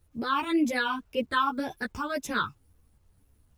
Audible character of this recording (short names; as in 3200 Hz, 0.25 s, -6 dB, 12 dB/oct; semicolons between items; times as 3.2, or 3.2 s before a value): phasing stages 8, 1.9 Hz, lowest notch 540–1400 Hz; a quantiser's noise floor 12-bit, dither none; a shimmering, thickened sound